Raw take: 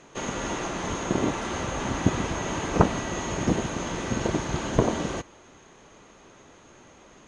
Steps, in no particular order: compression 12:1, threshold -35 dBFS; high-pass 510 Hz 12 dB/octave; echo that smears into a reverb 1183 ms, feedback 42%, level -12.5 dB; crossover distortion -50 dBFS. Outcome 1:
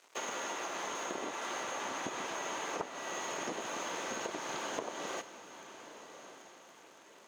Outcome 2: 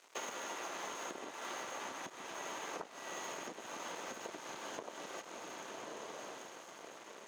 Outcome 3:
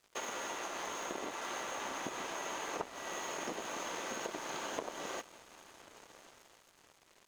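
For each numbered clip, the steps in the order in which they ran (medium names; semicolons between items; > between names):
crossover distortion > high-pass > compression > echo that smears into a reverb; echo that smears into a reverb > compression > crossover distortion > high-pass; high-pass > compression > echo that smears into a reverb > crossover distortion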